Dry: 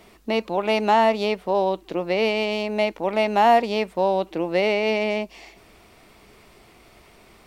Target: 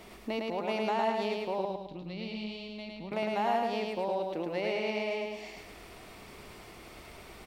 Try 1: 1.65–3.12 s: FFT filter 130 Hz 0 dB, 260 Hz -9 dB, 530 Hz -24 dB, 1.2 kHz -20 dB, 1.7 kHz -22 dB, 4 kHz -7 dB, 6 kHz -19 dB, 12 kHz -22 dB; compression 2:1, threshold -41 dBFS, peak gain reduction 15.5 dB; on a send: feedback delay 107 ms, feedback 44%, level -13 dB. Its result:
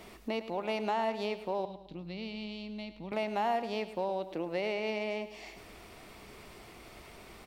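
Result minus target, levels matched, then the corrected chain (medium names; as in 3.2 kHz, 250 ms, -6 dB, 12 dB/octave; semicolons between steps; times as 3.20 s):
echo-to-direct -10.5 dB
1.65–3.12 s: FFT filter 130 Hz 0 dB, 260 Hz -9 dB, 530 Hz -24 dB, 1.2 kHz -20 dB, 1.7 kHz -22 dB, 4 kHz -7 dB, 6 kHz -19 dB, 12 kHz -22 dB; compression 2:1, threshold -41 dBFS, peak gain reduction 15.5 dB; on a send: feedback delay 107 ms, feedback 44%, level -2.5 dB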